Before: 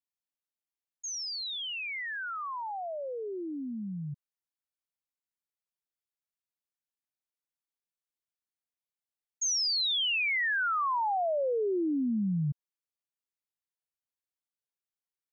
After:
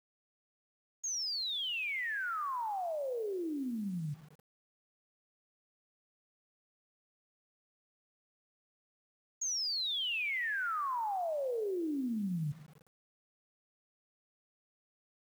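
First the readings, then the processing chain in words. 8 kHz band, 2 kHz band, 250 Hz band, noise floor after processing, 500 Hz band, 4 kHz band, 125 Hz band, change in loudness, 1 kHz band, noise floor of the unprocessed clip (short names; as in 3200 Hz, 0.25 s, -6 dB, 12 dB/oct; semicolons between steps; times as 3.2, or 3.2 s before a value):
n/a, -4.5 dB, -4.5 dB, under -85 dBFS, -4.5 dB, -4.5 dB, -4.5 dB, -4.5 dB, -4.5 dB, under -85 dBFS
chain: low shelf 130 Hz -2.5 dB; limiter -32 dBFS, peak gain reduction 6 dB; spring tank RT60 1.1 s, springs 39/50/54 ms, chirp 75 ms, DRR 15 dB; requantised 10-bit, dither none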